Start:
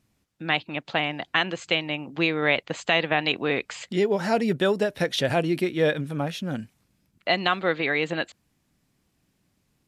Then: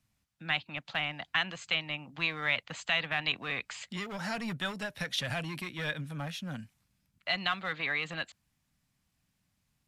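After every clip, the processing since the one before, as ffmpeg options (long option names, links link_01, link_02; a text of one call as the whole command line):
ffmpeg -i in.wav -filter_complex "[0:a]acrossover=split=200|1000[link_01][link_02][link_03];[link_02]asoftclip=type=hard:threshold=-28.5dB[link_04];[link_01][link_04][link_03]amix=inputs=3:normalize=0,equalizer=frequency=380:width=1.2:gain=-13,volume=-5dB" out.wav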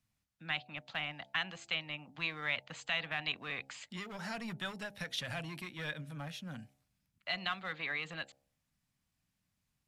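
ffmpeg -i in.wav -af "bandreject=frequency=67.42:width_type=h:width=4,bandreject=frequency=134.84:width_type=h:width=4,bandreject=frequency=202.26:width_type=h:width=4,bandreject=frequency=269.68:width_type=h:width=4,bandreject=frequency=337.1:width_type=h:width=4,bandreject=frequency=404.52:width_type=h:width=4,bandreject=frequency=471.94:width_type=h:width=4,bandreject=frequency=539.36:width_type=h:width=4,bandreject=frequency=606.78:width_type=h:width=4,bandreject=frequency=674.2:width_type=h:width=4,bandreject=frequency=741.62:width_type=h:width=4,bandreject=frequency=809.04:width_type=h:width=4,bandreject=frequency=876.46:width_type=h:width=4,volume=-5.5dB" out.wav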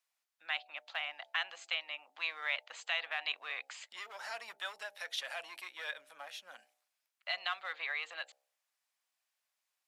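ffmpeg -i in.wav -af "highpass=frequency=570:width=0.5412,highpass=frequency=570:width=1.3066" out.wav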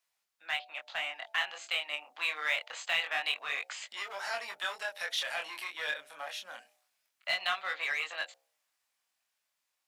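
ffmpeg -i in.wav -filter_complex "[0:a]dynaudnorm=framelen=240:gausssize=13:maxgain=3dB,asplit=2[link_01][link_02];[link_02]asoftclip=type=hard:threshold=-33.5dB,volume=-4dB[link_03];[link_01][link_03]amix=inputs=2:normalize=0,flanger=delay=20:depth=6.9:speed=0.25,volume=2.5dB" out.wav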